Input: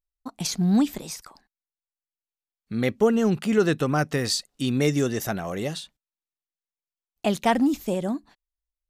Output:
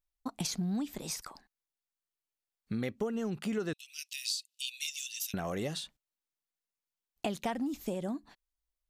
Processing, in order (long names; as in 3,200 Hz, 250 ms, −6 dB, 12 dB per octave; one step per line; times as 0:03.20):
0:03.73–0:05.34: Chebyshev high-pass filter 2,600 Hz, order 5
downward compressor 6 to 1, threshold −32 dBFS, peak gain reduction 16.5 dB